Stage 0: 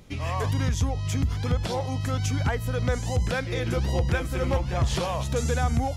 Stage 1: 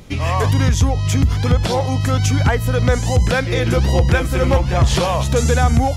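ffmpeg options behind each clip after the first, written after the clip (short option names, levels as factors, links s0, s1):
-af "acontrast=71,volume=1.5"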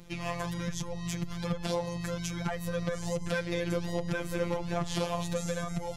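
-af "acompressor=threshold=0.158:ratio=6,afftfilt=real='hypot(re,im)*cos(PI*b)':imag='0':win_size=1024:overlap=0.75,volume=0.422"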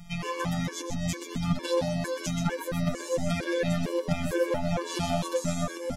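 -filter_complex "[0:a]asplit=5[s0][s1][s2][s3][s4];[s1]adelay=127,afreqshift=84,volume=0.447[s5];[s2]adelay=254,afreqshift=168,volume=0.16[s6];[s3]adelay=381,afreqshift=252,volume=0.0582[s7];[s4]adelay=508,afreqshift=336,volume=0.0209[s8];[s0][s5][s6][s7][s8]amix=inputs=5:normalize=0,afftfilt=real='re*gt(sin(2*PI*2.2*pts/sr)*(1-2*mod(floor(b*sr/1024/300),2)),0)':imag='im*gt(sin(2*PI*2.2*pts/sr)*(1-2*mod(floor(b*sr/1024/300),2)),0)':win_size=1024:overlap=0.75,volume=2"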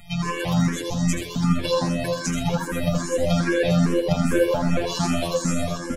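-filter_complex "[0:a]asplit=2[s0][s1];[s1]aecho=0:1:82|164|246|328:0.562|0.174|0.054|0.0168[s2];[s0][s2]amix=inputs=2:normalize=0,asplit=2[s3][s4];[s4]afreqshift=2.5[s5];[s3][s5]amix=inputs=2:normalize=1,volume=2.51"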